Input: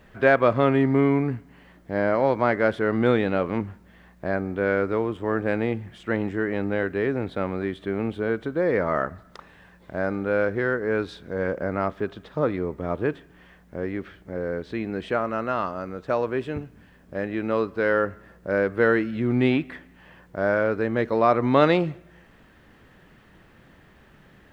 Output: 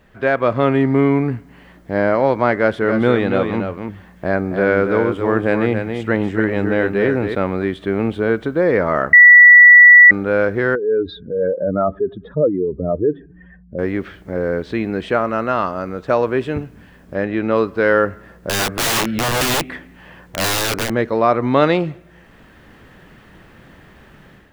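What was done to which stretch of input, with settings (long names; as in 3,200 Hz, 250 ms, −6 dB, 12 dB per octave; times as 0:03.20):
0:02.54–0:07.35: single-tap delay 279 ms −6.5 dB
0:09.13–0:10.11: beep over 1,950 Hz −8.5 dBFS
0:10.75–0:13.79: expanding power law on the bin magnitudes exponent 2.6
0:17.15–0:17.56: high-frequency loss of the air 52 metres
0:18.49–0:20.90: wrap-around overflow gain 22 dB
whole clip: automatic gain control gain up to 8.5 dB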